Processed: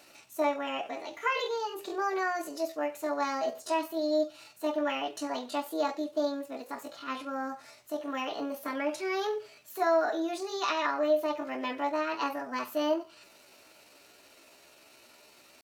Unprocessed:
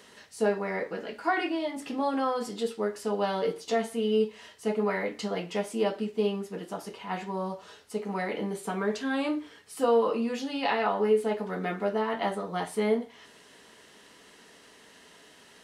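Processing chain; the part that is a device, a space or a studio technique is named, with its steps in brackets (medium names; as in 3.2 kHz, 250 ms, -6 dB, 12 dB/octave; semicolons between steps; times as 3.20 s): chipmunk voice (pitch shift +6 st); trim -2.5 dB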